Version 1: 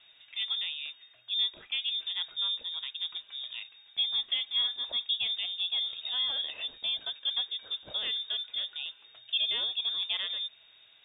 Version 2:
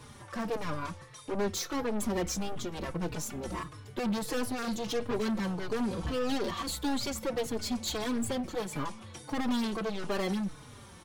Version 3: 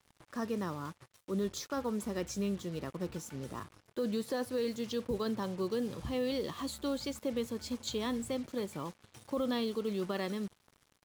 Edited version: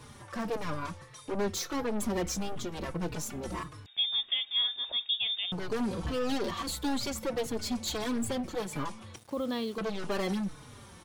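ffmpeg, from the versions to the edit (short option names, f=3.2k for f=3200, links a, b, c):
-filter_complex "[1:a]asplit=3[a][b][c];[a]atrim=end=3.862[d];[0:a]atrim=start=3.858:end=5.522[e];[b]atrim=start=5.518:end=9.162[f];[2:a]atrim=start=9.158:end=9.782[g];[c]atrim=start=9.778[h];[d][e]acrossfade=d=0.004:c1=hsin:c2=hsin[i];[i][f]acrossfade=d=0.004:c1=hsin:c2=hsin[j];[j][g]acrossfade=d=0.004:c1=hsin:c2=hsin[k];[k][h]acrossfade=d=0.004:c1=hsin:c2=hsin"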